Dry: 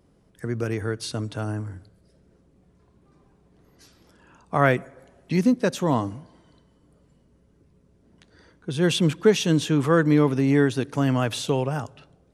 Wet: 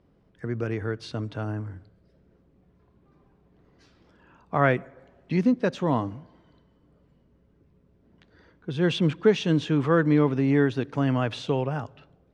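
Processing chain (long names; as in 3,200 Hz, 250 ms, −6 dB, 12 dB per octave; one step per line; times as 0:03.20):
low-pass filter 3,500 Hz 12 dB per octave
level −2 dB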